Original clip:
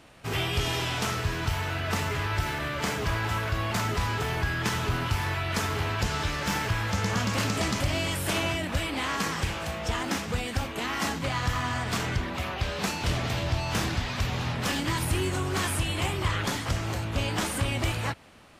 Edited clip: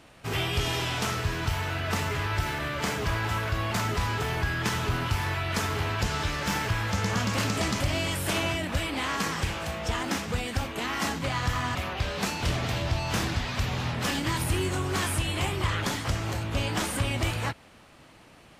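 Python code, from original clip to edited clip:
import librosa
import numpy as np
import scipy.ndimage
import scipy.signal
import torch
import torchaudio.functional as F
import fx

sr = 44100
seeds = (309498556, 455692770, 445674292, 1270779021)

y = fx.edit(x, sr, fx.cut(start_s=11.75, length_s=0.61), tone=tone)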